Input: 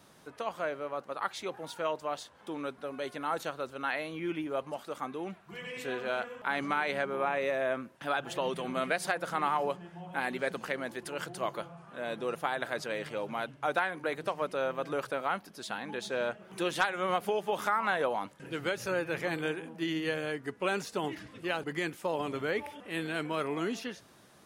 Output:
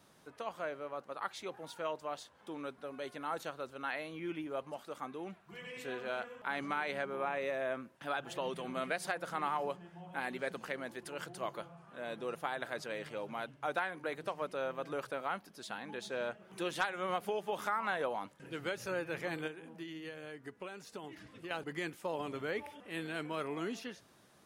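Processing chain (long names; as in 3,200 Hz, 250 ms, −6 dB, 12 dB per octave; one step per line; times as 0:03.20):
0:19.47–0:21.51: downward compressor 6 to 1, threshold −37 dBFS, peak gain reduction 11.5 dB
level −5.5 dB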